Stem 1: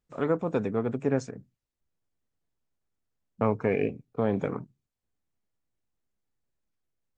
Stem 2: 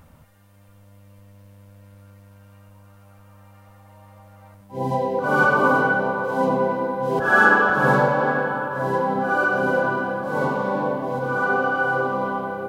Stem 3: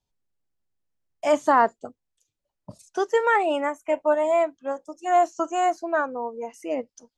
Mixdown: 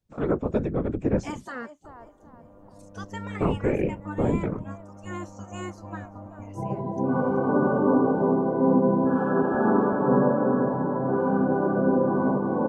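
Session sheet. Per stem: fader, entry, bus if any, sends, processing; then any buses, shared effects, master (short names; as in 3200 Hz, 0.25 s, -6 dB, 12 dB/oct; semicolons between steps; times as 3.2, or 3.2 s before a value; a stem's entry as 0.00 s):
-3.0 dB, 0.00 s, no bus, no send, no echo send, whisperiser
0.0 dB, 1.85 s, bus A, no send, echo send -14 dB, EQ curve 120 Hz 0 dB, 230 Hz +14 dB, 1100 Hz +1 dB, 2100 Hz -16 dB, 4600 Hz -23 dB
-8.0 dB, 0.00 s, bus A, no send, echo send -23 dB, dry
bus A: 0.0 dB, spectral gate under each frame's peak -10 dB weak; compressor 3:1, threshold -34 dBFS, peak gain reduction 14.5 dB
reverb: off
echo: feedback echo 0.382 s, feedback 37%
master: low shelf 430 Hz +8 dB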